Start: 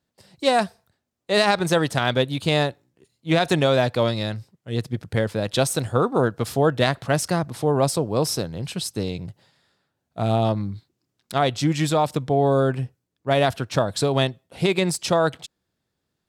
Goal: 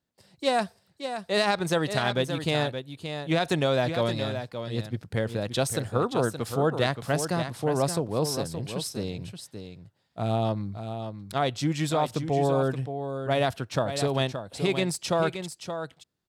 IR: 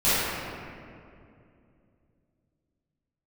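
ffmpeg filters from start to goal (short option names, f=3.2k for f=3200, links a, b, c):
-af "aecho=1:1:573:0.376,volume=-5.5dB"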